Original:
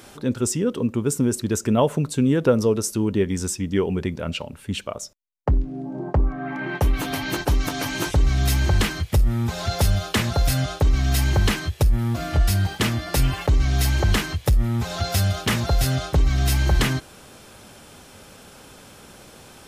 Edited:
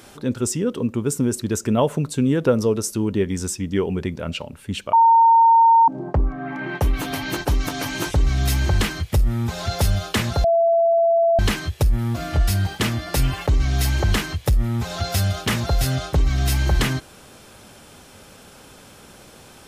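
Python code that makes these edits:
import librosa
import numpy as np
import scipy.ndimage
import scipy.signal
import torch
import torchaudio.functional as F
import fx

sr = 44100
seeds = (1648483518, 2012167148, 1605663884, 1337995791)

y = fx.edit(x, sr, fx.bleep(start_s=4.93, length_s=0.95, hz=915.0, db=-9.5),
    fx.bleep(start_s=10.44, length_s=0.95, hz=671.0, db=-13.5), tone=tone)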